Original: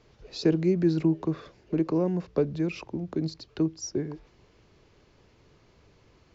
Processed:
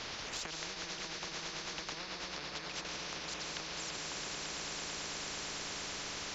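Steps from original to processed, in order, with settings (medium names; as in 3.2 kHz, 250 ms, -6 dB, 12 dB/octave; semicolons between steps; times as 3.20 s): low-pass 5.2 kHz 12 dB/octave; echo with a slow build-up 111 ms, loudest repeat 5, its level -13 dB; algorithmic reverb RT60 2.3 s, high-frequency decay 0.95×, pre-delay 100 ms, DRR 1 dB; 0.67–2.85 s: tremolo triangle 9.1 Hz, depth 65%; compression 6:1, threshold -39 dBFS, peak gain reduction 20.5 dB; bass shelf 350 Hz -7.5 dB; spectrum-flattening compressor 10:1; trim +7 dB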